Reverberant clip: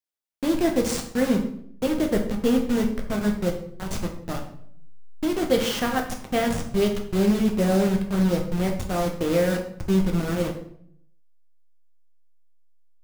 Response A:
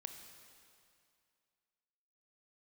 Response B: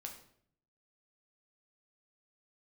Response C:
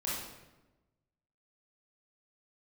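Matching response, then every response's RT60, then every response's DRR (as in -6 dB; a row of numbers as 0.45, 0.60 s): B; 2.4, 0.60, 1.1 s; 5.5, 1.5, -7.5 dB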